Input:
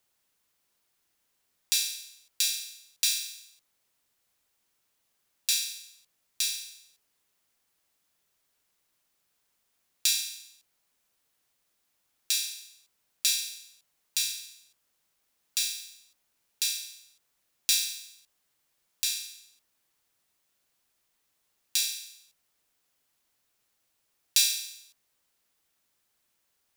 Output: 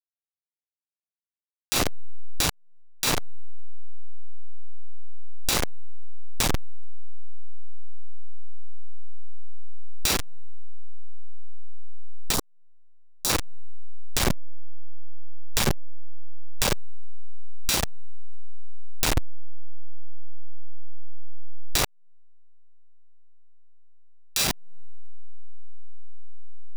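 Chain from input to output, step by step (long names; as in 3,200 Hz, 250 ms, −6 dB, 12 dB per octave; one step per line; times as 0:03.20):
hold until the input has moved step −18.5 dBFS
0:12.34–0:13.30: parametric band 2,300 Hz −15 dB 0.99 octaves
downward compressor 5 to 1, threshold −40 dBFS, peak gain reduction 19.5 dB
boost into a limiter +20.5 dB
level −1 dB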